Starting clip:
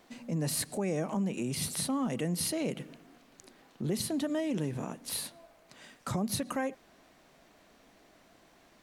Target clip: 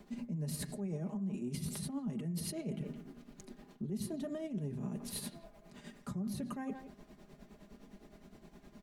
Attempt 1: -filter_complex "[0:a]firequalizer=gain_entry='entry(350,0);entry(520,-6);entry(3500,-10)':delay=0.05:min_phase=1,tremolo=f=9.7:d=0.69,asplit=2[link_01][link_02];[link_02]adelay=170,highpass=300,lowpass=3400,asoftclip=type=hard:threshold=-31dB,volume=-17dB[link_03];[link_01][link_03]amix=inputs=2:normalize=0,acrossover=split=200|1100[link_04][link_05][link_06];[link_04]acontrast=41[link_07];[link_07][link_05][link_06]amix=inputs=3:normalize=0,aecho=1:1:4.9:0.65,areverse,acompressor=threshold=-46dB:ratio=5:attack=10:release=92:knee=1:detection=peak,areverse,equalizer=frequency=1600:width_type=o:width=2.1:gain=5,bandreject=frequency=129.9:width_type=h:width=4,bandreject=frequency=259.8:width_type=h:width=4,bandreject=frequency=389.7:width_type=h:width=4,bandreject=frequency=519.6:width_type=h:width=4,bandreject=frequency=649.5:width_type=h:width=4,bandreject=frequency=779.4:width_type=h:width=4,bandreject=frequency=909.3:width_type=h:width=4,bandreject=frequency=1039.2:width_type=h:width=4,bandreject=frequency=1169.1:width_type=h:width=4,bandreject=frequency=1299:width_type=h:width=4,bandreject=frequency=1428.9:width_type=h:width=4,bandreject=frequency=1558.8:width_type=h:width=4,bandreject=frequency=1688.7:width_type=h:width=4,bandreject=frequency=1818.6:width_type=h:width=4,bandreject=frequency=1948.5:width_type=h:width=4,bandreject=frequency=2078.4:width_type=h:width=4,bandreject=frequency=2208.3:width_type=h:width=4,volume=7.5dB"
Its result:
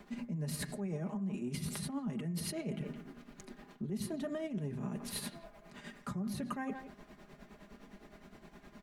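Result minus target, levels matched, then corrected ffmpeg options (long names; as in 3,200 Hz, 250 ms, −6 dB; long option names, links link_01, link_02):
2,000 Hz band +6.0 dB
-filter_complex "[0:a]firequalizer=gain_entry='entry(350,0);entry(520,-6);entry(3500,-10)':delay=0.05:min_phase=1,tremolo=f=9.7:d=0.69,asplit=2[link_01][link_02];[link_02]adelay=170,highpass=300,lowpass=3400,asoftclip=type=hard:threshold=-31dB,volume=-17dB[link_03];[link_01][link_03]amix=inputs=2:normalize=0,acrossover=split=200|1100[link_04][link_05][link_06];[link_04]acontrast=41[link_07];[link_07][link_05][link_06]amix=inputs=3:normalize=0,aecho=1:1:4.9:0.65,areverse,acompressor=threshold=-46dB:ratio=5:attack=10:release=92:knee=1:detection=peak,areverse,equalizer=frequency=1600:width_type=o:width=2.1:gain=-2.5,bandreject=frequency=129.9:width_type=h:width=4,bandreject=frequency=259.8:width_type=h:width=4,bandreject=frequency=389.7:width_type=h:width=4,bandreject=frequency=519.6:width_type=h:width=4,bandreject=frequency=649.5:width_type=h:width=4,bandreject=frequency=779.4:width_type=h:width=4,bandreject=frequency=909.3:width_type=h:width=4,bandreject=frequency=1039.2:width_type=h:width=4,bandreject=frequency=1169.1:width_type=h:width=4,bandreject=frequency=1299:width_type=h:width=4,bandreject=frequency=1428.9:width_type=h:width=4,bandreject=frequency=1558.8:width_type=h:width=4,bandreject=frequency=1688.7:width_type=h:width=4,bandreject=frequency=1818.6:width_type=h:width=4,bandreject=frequency=1948.5:width_type=h:width=4,bandreject=frequency=2078.4:width_type=h:width=4,bandreject=frequency=2208.3:width_type=h:width=4,volume=7.5dB"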